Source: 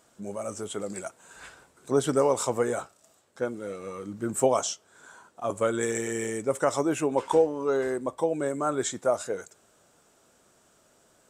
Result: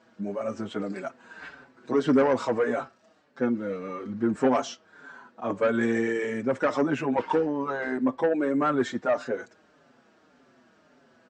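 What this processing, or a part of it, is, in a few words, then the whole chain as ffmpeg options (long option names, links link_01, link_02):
barber-pole flanger into a guitar amplifier: -filter_complex "[0:a]asplit=2[link_01][link_02];[link_02]adelay=5.6,afreqshift=-1.7[link_03];[link_01][link_03]amix=inputs=2:normalize=1,asoftclip=type=tanh:threshold=-22.5dB,highpass=78,equalizer=frequency=87:width_type=q:width=4:gain=-7,equalizer=frequency=250:width_type=q:width=4:gain=10,equalizer=frequency=1700:width_type=q:width=4:gain=5,equalizer=frequency=3500:width_type=q:width=4:gain=-5,lowpass=frequency=4500:width=0.5412,lowpass=frequency=4500:width=1.3066,volume=5.5dB"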